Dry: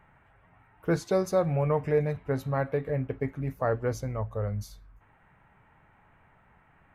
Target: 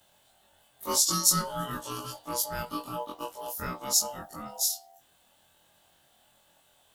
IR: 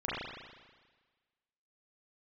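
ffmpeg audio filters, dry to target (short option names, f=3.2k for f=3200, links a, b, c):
-af "afftfilt=real='re':imag='-im':win_size=2048:overlap=0.75,aeval=exprs='val(0)*sin(2*PI*730*n/s)':c=same,aexciter=amount=14.3:drive=9.5:freq=3.8k"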